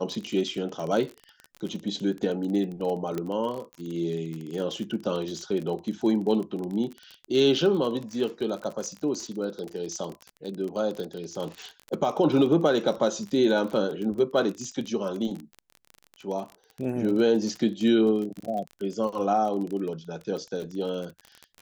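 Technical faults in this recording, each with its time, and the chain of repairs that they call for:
crackle 32/s -31 dBFS
3.18 pop -18 dBFS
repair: de-click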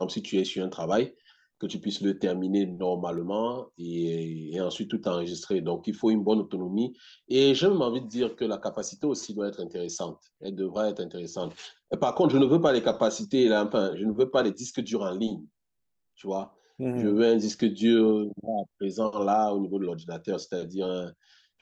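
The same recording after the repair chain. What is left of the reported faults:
3.18 pop

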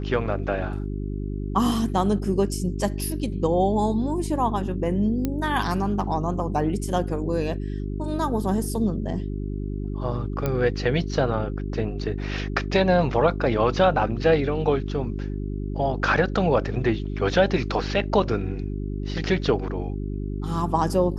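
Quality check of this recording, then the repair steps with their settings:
hum 50 Hz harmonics 8 -29 dBFS
5.25 pop -12 dBFS
10.46 pop -12 dBFS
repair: de-click; de-hum 50 Hz, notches 8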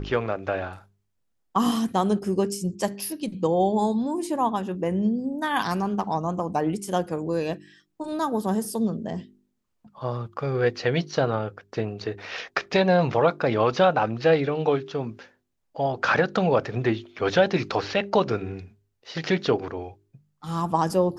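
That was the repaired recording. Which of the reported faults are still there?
none

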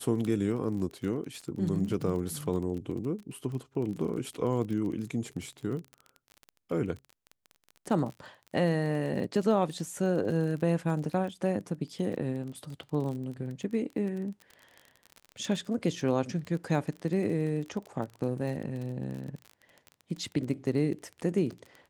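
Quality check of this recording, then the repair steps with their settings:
crackle 28/s -36 dBFS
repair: de-click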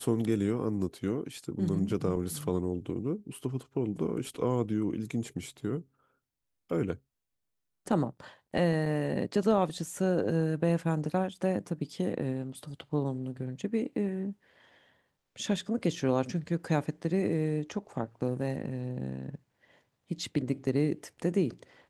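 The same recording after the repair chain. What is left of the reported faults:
none

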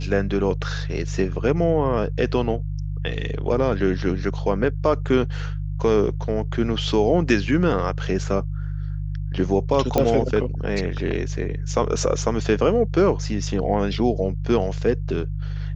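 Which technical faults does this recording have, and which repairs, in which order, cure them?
hum 50 Hz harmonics 3 -27 dBFS
9.98 pop -6 dBFS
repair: de-click; de-hum 50 Hz, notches 3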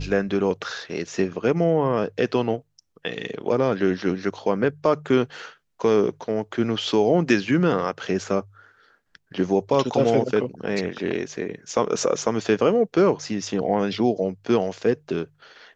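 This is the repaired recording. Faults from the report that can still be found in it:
none

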